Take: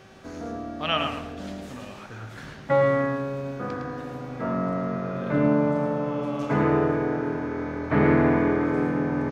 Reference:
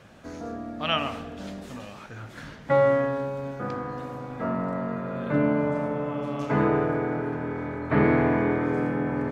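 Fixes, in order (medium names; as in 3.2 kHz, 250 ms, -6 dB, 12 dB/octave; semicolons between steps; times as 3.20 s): de-hum 383.1 Hz, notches 17; inverse comb 109 ms -6.5 dB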